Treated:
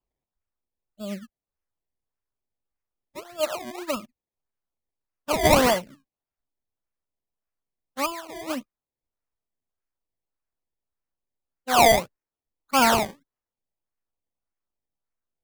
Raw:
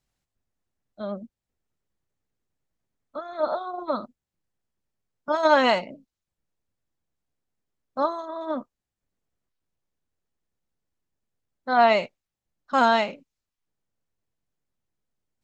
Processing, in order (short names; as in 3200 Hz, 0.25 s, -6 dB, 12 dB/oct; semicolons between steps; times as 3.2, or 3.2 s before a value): per-bin expansion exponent 1.5; in parallel at -5 dB: soft clip -20.5 dBFS, distortion -10 dB; 5.82–8.12 on the sum: bell 530 Hz -5 dB 1.3 oct; decimation with a swept rate 22×, swing 100% 1.7 Hz